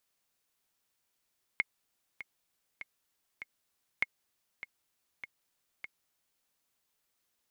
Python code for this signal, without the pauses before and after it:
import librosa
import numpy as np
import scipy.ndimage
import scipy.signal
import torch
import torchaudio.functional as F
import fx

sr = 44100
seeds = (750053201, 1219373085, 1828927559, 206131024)

y = fx.click_track(sr, bpm=99, beats=4, bars=2, hz=2160.0, accent_db=14.0, level_db=-14.5)